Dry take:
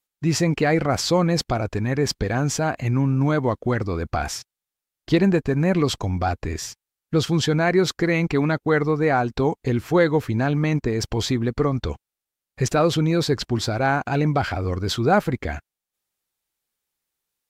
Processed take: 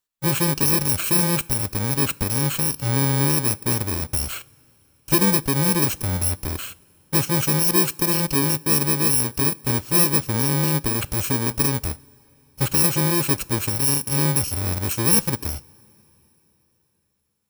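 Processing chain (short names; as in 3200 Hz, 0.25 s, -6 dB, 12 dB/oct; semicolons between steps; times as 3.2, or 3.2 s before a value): FFT order left unsorted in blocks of 64 samples; two-slope reverb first 0.35 s, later 3.9 s, from -18 dB, DRR 19 dB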